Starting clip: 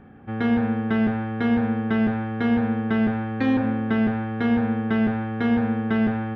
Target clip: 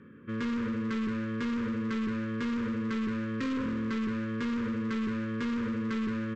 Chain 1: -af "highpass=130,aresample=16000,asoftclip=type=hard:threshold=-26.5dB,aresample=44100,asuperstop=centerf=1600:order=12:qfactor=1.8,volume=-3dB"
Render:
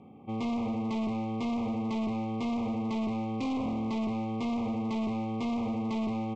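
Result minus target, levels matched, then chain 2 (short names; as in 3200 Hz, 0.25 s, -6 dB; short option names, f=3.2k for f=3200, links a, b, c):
2000 Hz band -8.0 dB
-af "highpass=130,aresample=16000,asoftclip=type=hard:threshold=-26.5dB,aresample=44100,asuperstop=centerf=730:order=12:qfactor=1.8,volume=-3dB"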